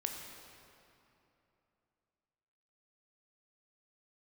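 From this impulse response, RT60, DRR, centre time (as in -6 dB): 3.0 s, 2.0 dB, 79 ms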